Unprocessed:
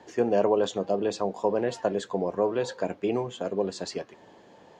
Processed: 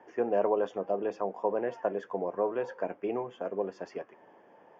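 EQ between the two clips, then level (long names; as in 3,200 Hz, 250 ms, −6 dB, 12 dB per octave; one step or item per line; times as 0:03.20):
moving average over 11 samples
high-pass filter 560 Hz 6 dB per octave
high-frequency loss of the air 85 metres
0.0 dB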